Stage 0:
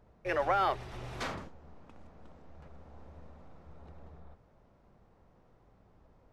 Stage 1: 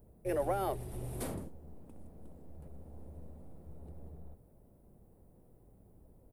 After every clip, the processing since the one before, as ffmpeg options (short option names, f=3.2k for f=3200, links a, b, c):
-af "firequalizer=gain_entry='entry(360,0);entry(1200,-17);entry(6300,-10);entry(9400,14)':delay=0.05:min_phase=1,volume=3dB"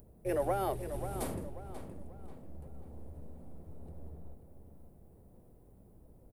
-filter_complex "[0:a]acompressor=mode=upward:threshold=-56dB:ratio=2.5,asplit=2[a][b];[b]adelay=538,lowpass=f=3.7k:p=1,volume=-9.5dB,asplit=2[c][d];[d]adelay=538,lowpass=f=3.7k:p=1,volume=0.38,asplit=2[e][f];[f]adelay=538,lowpass=f=3.7k:p=1,volume=0.38,asplit=2[g][h];[h]adelay=538,lowpass=f=3.7k:p=1,volume=0.38[i];[c][e][g][i]amix=inputs=4:normalize=0[j];[a][j]amix=inputs=2:normalize=0,volume=1dB"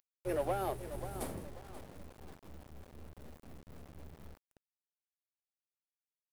-af "aeval=exprs='0.0891*(cos(1*acos(clip(val(0)/0.0891,-1,1)))-cos(1*PI/2))+0.00224*(cos(5*acos(clip(val(0)/0.0891,-1,1)))-cos(5*PI/2))+0.00562*(cos(7*acos(clip(val(0)/0.0891,-1,1)))-cos(7*PI/2))':c=same,aeval=exprs='val(0)*gte(abs(val(0)),0.00422)':c=same,volume=-2.5dB"